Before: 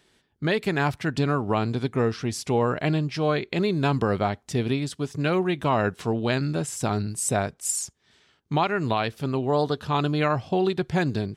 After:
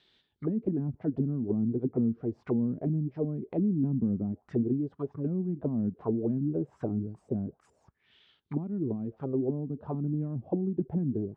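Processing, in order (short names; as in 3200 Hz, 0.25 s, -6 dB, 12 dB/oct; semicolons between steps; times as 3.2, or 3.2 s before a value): envelope low-pass 230–3800 Hz down, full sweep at -20 dBFS; gain -9 dB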